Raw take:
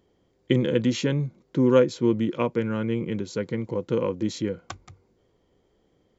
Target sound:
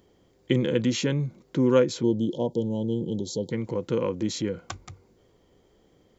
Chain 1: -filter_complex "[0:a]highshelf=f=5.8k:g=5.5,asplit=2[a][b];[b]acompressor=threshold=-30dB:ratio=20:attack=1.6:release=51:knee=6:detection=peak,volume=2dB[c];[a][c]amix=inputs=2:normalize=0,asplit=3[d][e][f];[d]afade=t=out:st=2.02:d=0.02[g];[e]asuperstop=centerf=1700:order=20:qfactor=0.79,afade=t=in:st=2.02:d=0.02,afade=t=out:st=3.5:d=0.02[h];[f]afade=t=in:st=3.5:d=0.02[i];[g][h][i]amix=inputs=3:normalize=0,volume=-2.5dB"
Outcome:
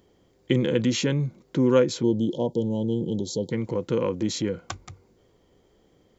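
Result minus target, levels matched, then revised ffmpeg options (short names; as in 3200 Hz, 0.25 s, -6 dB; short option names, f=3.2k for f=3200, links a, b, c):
compressor: peak gain reduction -7 dB
-filter_complex "[0:a]highshelf=f=5.8k:g=5.5,asplit=2[a][b];[b]acompressor=threshold=-37.5dB:ratio=20:attack=1.6:release=51:knee=6:detection=peak,volume=2dB[c];[a][c]amix=inputs=2:normalize=0,asplit=3[d][e][f];[d]afade=t=out:st=2.02:d=0.02[g];[e]asuperstop=centerf=1700:order=20:qfactor=0.79,afade=t=in:st=2.02:d=0.02,afade=t=out:st=3.5:d=0.02[h];[f]afade=t=in:st=3.5:d=0.02[i];[g][h][i]amix=inputs=3:normalize=0,volume=-2.5dB"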